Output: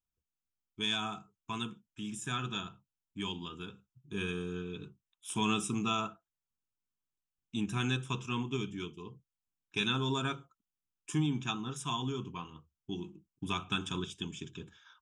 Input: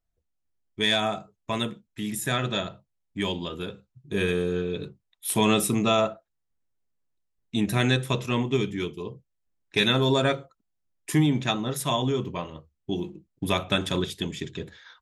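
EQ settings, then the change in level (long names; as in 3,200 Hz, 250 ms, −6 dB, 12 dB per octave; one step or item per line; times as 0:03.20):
low-shelf EQ 79 Hz −10 dB
phaser with its sweep stopped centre 2,900 Hz, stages 8
−6.0 dB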